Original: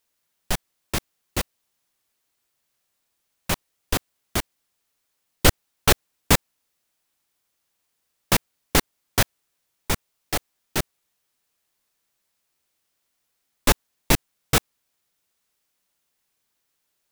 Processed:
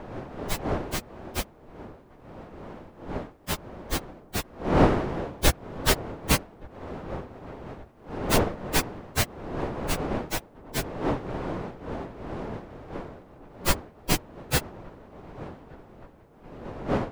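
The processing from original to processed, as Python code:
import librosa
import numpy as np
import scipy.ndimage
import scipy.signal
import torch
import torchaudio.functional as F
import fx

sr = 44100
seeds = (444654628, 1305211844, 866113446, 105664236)

y = fx.partial_stretch(x, sr, pct=108)
y = fx.dmg_wind(y, sr, seeds[0], corner_hz=570.0, level_db=-33.0)
y = fx.echo_wet_lowpass(y, sr, ms=1170, feedback_pct=76, hz=1300.0, wet_db=-23.0)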